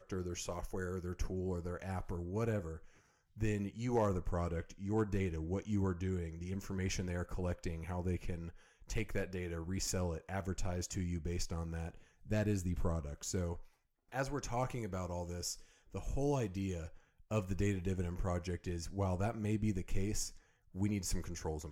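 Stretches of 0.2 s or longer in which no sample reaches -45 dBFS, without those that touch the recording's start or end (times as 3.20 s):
2.77–3.37 s
8.50–8.90 s
11.91–12.27 s
13.61–14.12 s
15.54–15.94 s
16.88–17.31 s
20.29–20.75 s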